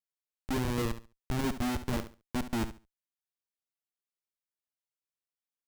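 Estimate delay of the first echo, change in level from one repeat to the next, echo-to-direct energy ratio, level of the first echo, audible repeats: 70 ms, -13.5 dB, -12.0 dB, -12.0 dB, 2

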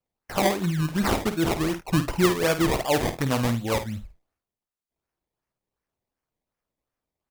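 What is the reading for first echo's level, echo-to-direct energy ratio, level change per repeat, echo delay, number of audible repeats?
-10.0 dB, -9.5 dB, no steady repeat, 51 ms, 1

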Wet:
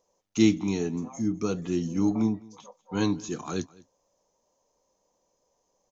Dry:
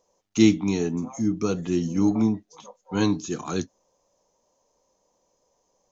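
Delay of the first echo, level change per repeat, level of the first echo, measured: 0.207 s, no steady repeat, -23.5 dB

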